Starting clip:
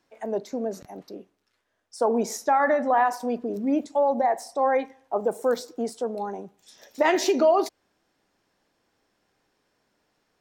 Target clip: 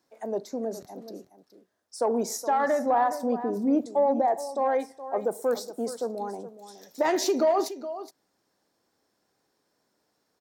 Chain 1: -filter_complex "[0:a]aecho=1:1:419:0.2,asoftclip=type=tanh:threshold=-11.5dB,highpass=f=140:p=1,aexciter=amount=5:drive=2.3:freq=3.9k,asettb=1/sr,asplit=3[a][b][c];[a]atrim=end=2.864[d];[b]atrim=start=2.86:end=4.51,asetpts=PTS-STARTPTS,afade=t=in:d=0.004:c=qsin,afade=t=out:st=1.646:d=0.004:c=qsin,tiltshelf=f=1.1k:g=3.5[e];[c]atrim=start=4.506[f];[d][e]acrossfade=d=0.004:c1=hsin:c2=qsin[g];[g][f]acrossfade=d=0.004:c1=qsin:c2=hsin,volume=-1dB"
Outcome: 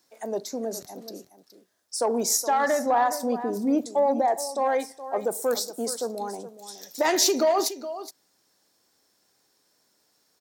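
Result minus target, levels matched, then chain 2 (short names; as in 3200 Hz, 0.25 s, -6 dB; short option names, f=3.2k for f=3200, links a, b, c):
4000 Hz band +7.5 dB
-filter_complex "[0:a]aecho=1:1:419:0.2,asoftclip=type=tanh:threshold=-11.5dB,highpass=f=140:p=1,highshelf=f=2.4k:g=-12,aexciter=amount=5:drive=2.3:freq=3.9k,asettb=1/sr,asplit=3[a][b][c];[a]atrim=end=2.864[d];[b]atrim=start=2.86:end=4.51,asetpts=PTS-STARTPTS,afade=t=in:d=0.004:c=qsin,afade=t=out:st=1.646:d=0.004:c=qsin,tiltshelf=f=1.1k:g=3.5[e];[c]atrim=start=4.506[f];[d][e]acrossfade=d=0.004:c1=hsin:c2=qsin[g];[g][f]acrossfade=d=0.004:c1=qsin:c2=hsin,volume=-1dB"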